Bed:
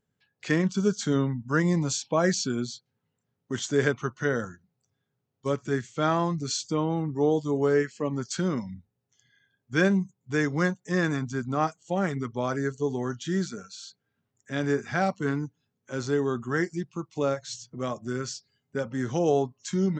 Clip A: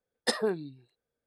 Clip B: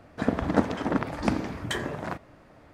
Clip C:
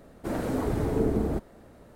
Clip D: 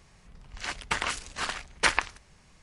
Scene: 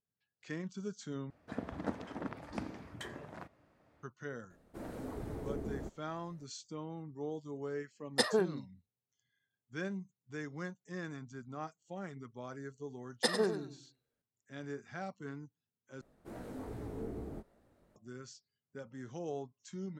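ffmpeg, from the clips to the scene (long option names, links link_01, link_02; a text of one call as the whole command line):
ffmpeg -i bed.wav -i cue0.wav -i cue1.wav -i cue2.wav -filter_complex "[3:a]asplit=2[link_01][link_02];[1:a]asplit=2[link_03][link_04];[0:a]volume=-17dB[link_05];[2:a]highpass=52[link_06];[link_03]agate=range=-24dB:threshold=-51dB:ratio=16:release=100:detection=peak[link_07];[link_04]aecho=1:1:97|194|291:0.355|0.0993|0.0278[link_08];[link_02]flanger=delay=16:depth=7.1:speed=2.5[link_09];[link_05]asplit=3[link_10][link_11][link_12];[link_10]atrim=end=1.304[link_13];[link_06]atrim=end=2.73,asetpts=PTS-STARTPTS,volume=-15dB[link_14];[link_11]atrim=start=4.026:end=16.014[link_15];[link_09]atrim=end=1.95,asetpts=PTS-STARTPTS,volume=-13.5dB[link_16];[link_12]atrim=start=17.956[link_17];[link_01]atrim=end=1.95,asetpts=PTS-STARTPTS,volume=-14.5dB,afade=type=in:duration=0.004:curve=hsin,afade=type=out:start_time=1.946:duration=0.004:curve=hsin,adelay=4500[link_18];[link_07]atrim=end=1.26,asetpts=PTS-STARTPTS,volume=-1.5dB,afade=type=in:duration=0.004:curve=hsin,afade=type=out:start_time=1.256:duration=0.004:curve=hsin,adelay=7910[link_19];[link_08]atrim=end=1.26,asetpts=PTS-STARTPTS,volume=-3dB,afade=type=in:duration=0.004:curve=hsin,afade=type=out:start_time=1.256:duration=0.004:curve=hsin,adelay=12960[link_20];[link_13][link_14]acrossfade=duration=0.004:curve1=hsin:curve2=hsin[link_21];[link_21][link_15]acrossfade=duration=0.004:curve1=hsin:curve2=hsin[link_22];[link_22][link_16]acrossfade=duration=0.004:curve1=hsin:curve2=hsin[link_23];[link_23][link_17]acrossfade=duration=0.004:curve1=hsin:curve2=hsin[link_24];[link_24][link_18][link_19][link_20]amix=inputs=4:normalize=0" out.wav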